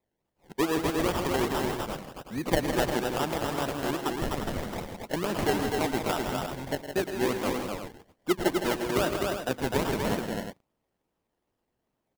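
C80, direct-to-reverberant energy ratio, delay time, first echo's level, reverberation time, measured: no reverb audible, no reverb audible, 112 ms, −12.0 dB, no reverb audible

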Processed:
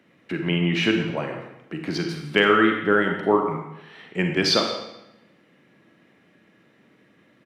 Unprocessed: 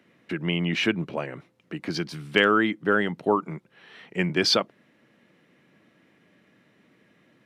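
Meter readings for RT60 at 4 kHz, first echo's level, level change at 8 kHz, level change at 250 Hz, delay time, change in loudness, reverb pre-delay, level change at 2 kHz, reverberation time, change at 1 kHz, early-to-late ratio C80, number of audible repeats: 0.80 s, −15.5 dB, +1.0 dB, +3.5 dB, 168 ms, +2.5 dB, 37 ms, +2.5 dB, 0.85 s, +3.0 dB, 6.5 dB, 1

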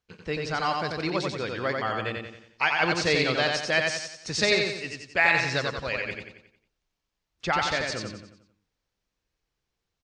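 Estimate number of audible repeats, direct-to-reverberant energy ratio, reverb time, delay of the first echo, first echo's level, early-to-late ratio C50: 5, no reverb audible, no reverb audible, 90 ms, −3.5 dB, no reverb audible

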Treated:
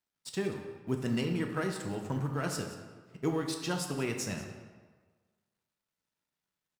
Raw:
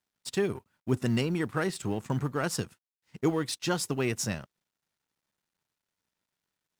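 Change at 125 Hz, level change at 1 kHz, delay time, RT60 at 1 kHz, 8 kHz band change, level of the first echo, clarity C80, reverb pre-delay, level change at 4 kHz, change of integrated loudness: −3.5 dB, −3.5 dB, 183 ms, 1.5 s, −4.5 dB, −15.5 dB, 7.5 dB, 3 ms, −4.0 dB, −3.5 dB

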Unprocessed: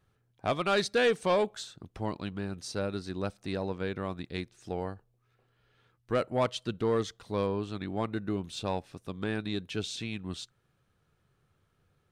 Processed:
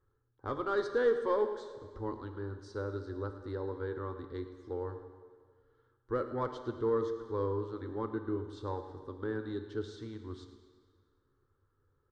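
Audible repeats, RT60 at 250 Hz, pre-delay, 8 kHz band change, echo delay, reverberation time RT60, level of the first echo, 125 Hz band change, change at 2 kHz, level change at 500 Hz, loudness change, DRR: 2, 1.8 s, 3 ms, below −15 dB, 109 ms, 1.8 s, −15.5 dB, −4.5 dB, −8.5 dB, −2.0 dB, −4.0 dB, 7.0 dB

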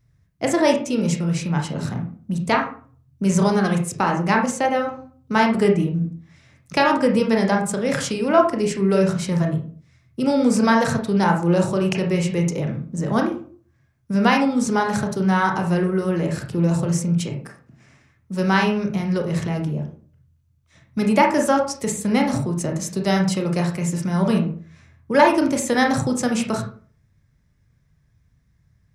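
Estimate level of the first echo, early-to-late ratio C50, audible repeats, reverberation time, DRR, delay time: no echo audible, 8.0 dB, no echo audible, 0.45 s, 1.5 dB, no echo audible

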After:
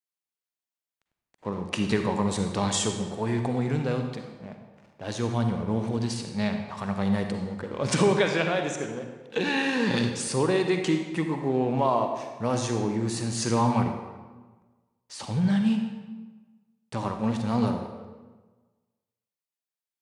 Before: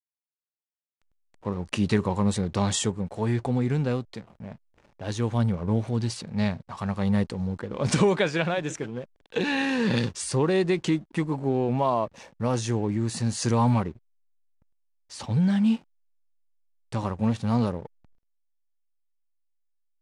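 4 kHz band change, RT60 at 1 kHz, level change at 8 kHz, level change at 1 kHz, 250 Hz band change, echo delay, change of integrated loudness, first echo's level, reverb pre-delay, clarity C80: +1.0 dB, 1.3 s, +1.0 dB, +1.5 dB, −0.5 dB, no echo audible, −0.5 dB, no echo audible, 40 ms, 7.0 dB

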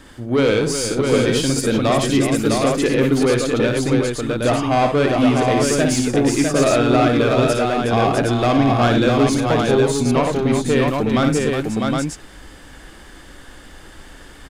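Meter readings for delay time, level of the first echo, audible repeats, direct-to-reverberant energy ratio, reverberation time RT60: 58 ms, −6.0 dB, 5, no reverb audible, no reverb audible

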